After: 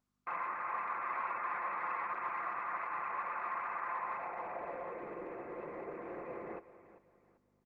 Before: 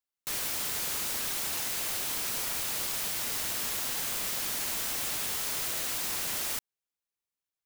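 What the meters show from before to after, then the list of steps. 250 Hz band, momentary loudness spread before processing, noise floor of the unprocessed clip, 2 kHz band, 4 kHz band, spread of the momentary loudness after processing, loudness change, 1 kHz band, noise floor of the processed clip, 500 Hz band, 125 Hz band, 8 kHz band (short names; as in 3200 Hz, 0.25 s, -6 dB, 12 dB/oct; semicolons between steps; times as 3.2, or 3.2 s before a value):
-3.5 dB, 0 LU, under -85 dBFS, -4.0 dB, under -35 dB, 8 LU, -9.5 dB, +6.5 dB, -75 dBFS, +1.5 dB, -12.5 dB, under -40 dB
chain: comb 5.8 ms, depth 49%; limiter -23 dBFS, peak gain reduction 4.5 dB; inverted band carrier 2600 Hz; hum 50 Hz, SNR 23 dB; small resonant body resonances 1100/2000 Hz, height 7 dB, ringing for 20 ms; hard clip -36 dBFS, distortion -17 dB; air absorption 230 m; feedback echo 0.391 s, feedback 31%, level -15 dB; band-pass sweep 1100 Hz -> 430 Hz, 3.88–5.17; gain +10 dB; Opus 20 kbps 48000 Hz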